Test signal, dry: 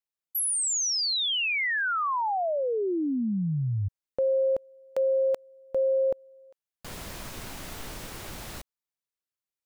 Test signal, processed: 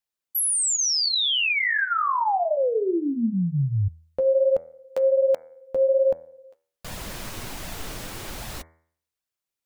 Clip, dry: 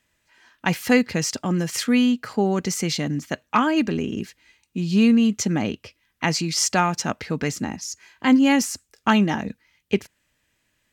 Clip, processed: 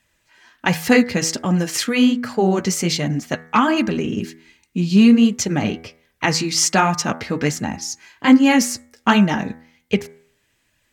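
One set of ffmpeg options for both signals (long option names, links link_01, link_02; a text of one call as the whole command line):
ffmpeg -i in.wav -af "flanger=delay=1.1:depth=9:regen=-28:speed=1.3:shape=sinusoidal,bandreject=frequency=81.19:width_type=h:width=4,bandreject=frequency=162.38:width_type=h:width=4,bandreject=frequency=243.57:width_type=h:width=4,bandreject=frequency=324.76:width_type=h:width=4,bandreject=frequency=405.95:width_type=h:width=4,bandreject=frequency=487.14:width_type=h:width=4,bandreject=frequency=568.33:width_type=h:width=4,bandreject=frequency=649.52:width_type=h:width=4,bandreject=frequency=730.71:width_type=h:width=4,bandreject=frequency=811.9:width_type=h:width=4,bandreject=frequency=893.09:width_type=h:width=4,bandreject=frequency=974.28:width_type=h:width=4,bandreject=frequency=1055.47:width_type=h:width=4,bandreject=frequency=1136.66:width_type=h:width=4,bandreject=frequency=1217.85:width_type=h:width=4,bandreject=frequency=1299.04:width_type=h:width=4,bandreject=frequency=1380.23:width_type=h:width=4,bandreject=frequency=1461.42:width_type=h:width=4,bandreject=frequency=1542.61:width_type=h:width=4,bandreject=frequency=1623.8:width_type=h:width=4,bandreject=frequency=1704.99:width_type=h:width=4,bandreject=frequency=1786.18:width_type=h:width=4,bandreject=frequency=1867.37:width_type=h:width=4,bandreject=frequency=1948.56:width_type=h:width=4,bandreject=frequency=2029.75:width_type=h:width=4,bandreject=frequency=2110.94:width_type=h:width=4,bandreject=frequency=2192.13:width_type=h:width=4,bandreject=frequency=2273.32:width_type=h:width=4,volume=8dB" out.wav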